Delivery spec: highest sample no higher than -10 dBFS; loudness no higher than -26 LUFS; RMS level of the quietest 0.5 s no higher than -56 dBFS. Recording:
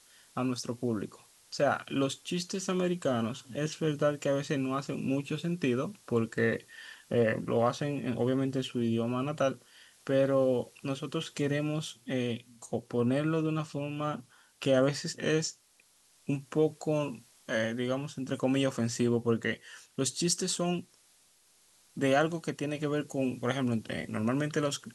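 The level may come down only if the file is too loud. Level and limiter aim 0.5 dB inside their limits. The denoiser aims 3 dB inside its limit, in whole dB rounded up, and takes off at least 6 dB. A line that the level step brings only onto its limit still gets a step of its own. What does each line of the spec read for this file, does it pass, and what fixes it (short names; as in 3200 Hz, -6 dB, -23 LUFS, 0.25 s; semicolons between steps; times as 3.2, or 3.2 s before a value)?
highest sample -14.0 dBFS: OK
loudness -31.5 LUFS: OK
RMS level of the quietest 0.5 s -65 dBFS: OK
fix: none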